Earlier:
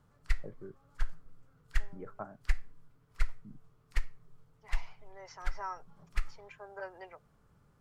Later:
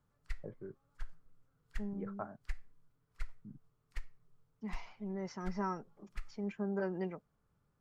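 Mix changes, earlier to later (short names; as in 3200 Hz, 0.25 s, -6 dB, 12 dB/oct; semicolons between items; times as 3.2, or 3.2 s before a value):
second voice: remove HPF 570 Hz 24 dB/oct; background -11.0 dB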